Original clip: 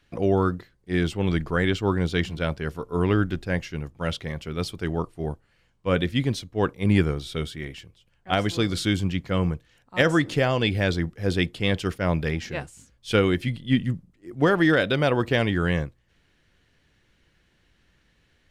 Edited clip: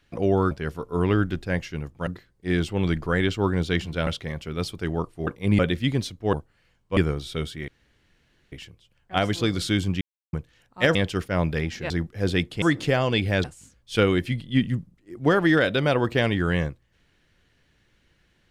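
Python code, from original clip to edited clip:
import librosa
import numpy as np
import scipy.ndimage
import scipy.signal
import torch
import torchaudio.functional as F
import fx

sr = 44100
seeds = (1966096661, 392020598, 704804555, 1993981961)

y = fx.edit(x, sr, fx.move(start_s=2.51, length_s=1.56, to_s=0.51),
    fx.swap(start_s=5.27, length_s=0.64, other_s=6.65, other_length_s=0.32),
    fx.insert_room_tone(at_s=7.68, length_s=0.84),
    fx.silence(start_s=9.17, length_s=0.32),
    fx.swap(start_s=10.11, length_s=0.82, other_s=11.65, other_length_s=0.95), tone=tone)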